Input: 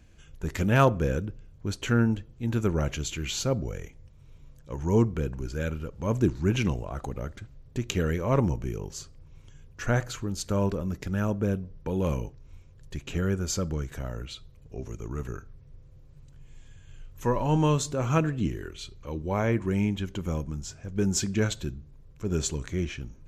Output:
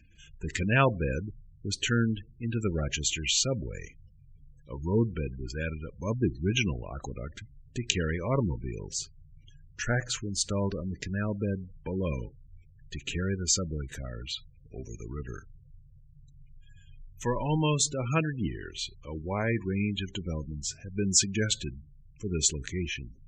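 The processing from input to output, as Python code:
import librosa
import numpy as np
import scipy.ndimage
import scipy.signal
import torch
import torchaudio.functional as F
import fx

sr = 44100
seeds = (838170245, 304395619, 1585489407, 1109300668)

y = fx.band_shelf(x, sr, hz=4200.0, db=10.0, octaves=2.8)
y = fx.spec_gate(y, sr, threshold_db=-20, keep='strong')
y = fx.notch(y, sr, hz=2200.0, q=12.0)
y = F.gain(torch.from_numpy(y), -3.5).numpy()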